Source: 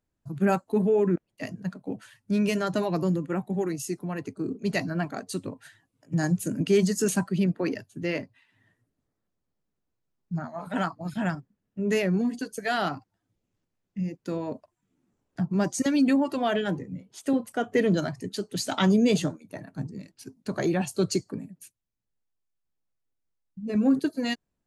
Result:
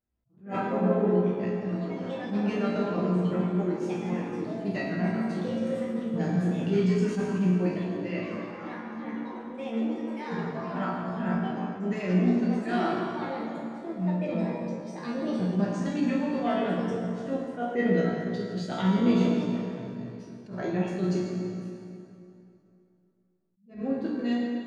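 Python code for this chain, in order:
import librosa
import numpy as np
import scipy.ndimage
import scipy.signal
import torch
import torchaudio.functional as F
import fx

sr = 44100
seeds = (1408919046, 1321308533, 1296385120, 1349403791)

y = fx.high_shelf(x, sr, hz=3100.0, db=11.0)
y = fx.comb_fb(y, sr, f0_hz=60.0, decay_s=0.38, harmonics='all', damping=0.0, mix_pct=90)
y = fx.echo_pitch(y, sr, ms=125, semitones=4, count=3, db_per_echo=-6.0)
y = fx.spacing_loss(y, sr, db_at_10k=35)
y = fx.rev_fdn(y, sr, rt60_s=2.8, lf_ratio=1.0, hf_ratio=0.75, size_ms=89.0, drr_db=-4.0)
y = fx.attack_slew(y, sr, db_per_s=160.0)
y = F.gain(torch.from_numpy(y), 2.0).numpy()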